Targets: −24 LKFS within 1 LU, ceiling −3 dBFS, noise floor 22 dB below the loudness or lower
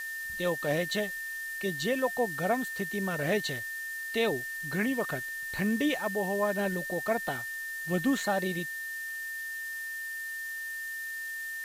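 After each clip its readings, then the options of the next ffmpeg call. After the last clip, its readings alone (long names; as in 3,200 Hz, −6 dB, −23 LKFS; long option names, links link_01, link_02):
interfering tone 1,800 Hz; level of the tone −35 dBFS; background noise floor −38 dBFS; target noise floor −54 dBFS; integrated loudness −31.5 LKFS; sample peak −16.5 dBFS; target loudness −24.0 LKFS
→ -af "bandreject=frequency=1800:width=30"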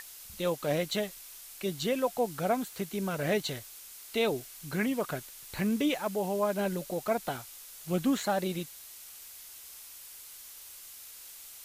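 interfering tone none found; background noise floor −49 dBFS; target noise floor −54 dBFS
→ -af "afftdn=noise_reduction=6:noise_floor=-49"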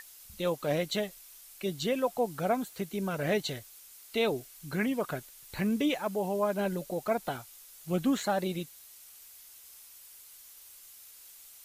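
background noise floor −53 dBFS; target noise floor −54 dBFS
→ -af "afftdn=noise_reduction=6:noise_floor=-53"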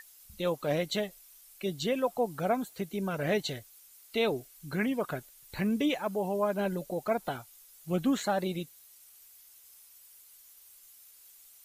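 background noise floor −57 dBFS; integrated loudness −32.0 LKFS; sample peak −17.5 dBFS; target loudness −24.0 LKFS
→ -af "volume=8dB"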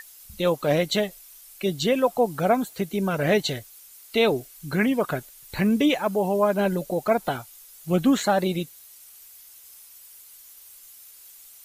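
integrated loudness −24.0 LKFS; sample peak −9.5 dBFS; background noise floor −49 dBFS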